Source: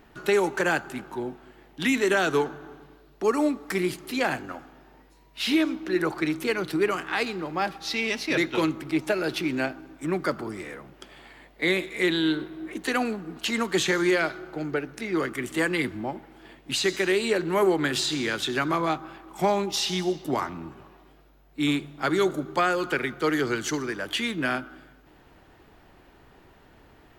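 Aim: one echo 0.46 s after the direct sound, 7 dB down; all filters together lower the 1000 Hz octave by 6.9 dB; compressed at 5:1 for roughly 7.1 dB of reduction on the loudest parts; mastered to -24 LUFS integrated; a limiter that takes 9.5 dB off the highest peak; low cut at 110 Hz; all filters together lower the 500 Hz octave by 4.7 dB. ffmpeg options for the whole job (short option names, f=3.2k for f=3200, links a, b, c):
-af "highpass=110,equalizer=f=500:t=o:g=-5,equalizer=f=1k:t=o:g=-8,acompressor=threshold=-29dB:ratio=5,alimiter=level_in=3dB:limit=-24dB:level=0:latency=1,volume=-3dB,aecho=1:1:460:0.447,volume=12.5dB"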